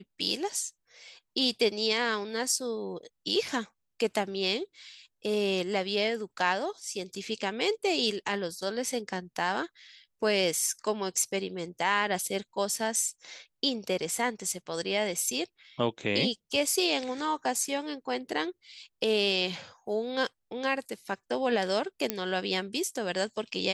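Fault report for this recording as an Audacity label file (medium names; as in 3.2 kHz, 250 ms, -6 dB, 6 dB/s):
22.100000	22.100000	pop -10 dBFS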